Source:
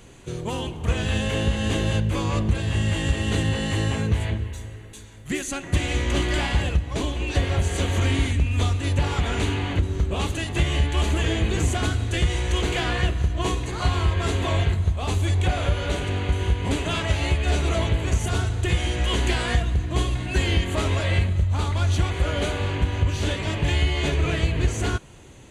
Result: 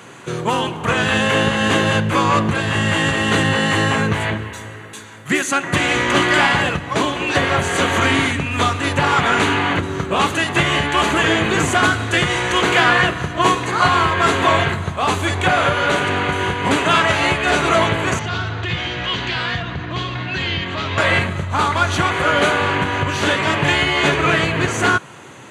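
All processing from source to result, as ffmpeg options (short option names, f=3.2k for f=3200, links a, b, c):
-filter_complex "[0:a]asettb=1/sr,asplit=3[a][b][c];[a]atrim=end=18.194[d];[b]atrim=start=18.19:end=20.98,asetpts=PTS-STARTPTS,afade=t=in:d=0.004:c=qsin,afade=t=out:st=2.786:d=0.004:c=qsin,lowpass=f=4.6k:w=0.5412,lowpass=f=4.6k:w=1.3066,acrossover=split=160|3000[e][f][g];[f]acompressor=threshold=-36dB:ratio=6:attack=3.2:release=140:knee=2.83:detection=peak[h];[e][h][g]amix=inputs=3:normalize=0[i];[c]atrim=start=20.976[j];[d][i]acrossfade=d=0.004:c1=hsin:c2=qsin[k];[k][j]acrossfade=d=0.004:c1=qsin:c2=hsin,highpass=f=120:w=0.5412,highpass=f=120:w=1.3066,equalizer=f=1.3k:w=0.88:g=11.5,volume=6.5dB"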